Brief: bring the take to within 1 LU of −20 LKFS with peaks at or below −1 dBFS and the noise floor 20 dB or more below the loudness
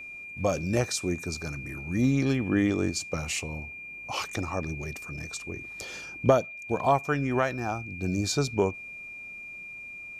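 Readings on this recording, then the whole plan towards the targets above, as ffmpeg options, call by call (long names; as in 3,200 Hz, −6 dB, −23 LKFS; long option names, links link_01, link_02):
interfering tone 2,400 Hz; level of the tone −39 dBFS; integrated loudness −29.5 LKFS; sample peak −8.0 dBFS; target loudness −20.0 LKFS
→ -af "bandreject=frequency=2400:width=30"
-af "volume=9.5dB,alimiter=limit=-1dB:level=0:latency=1"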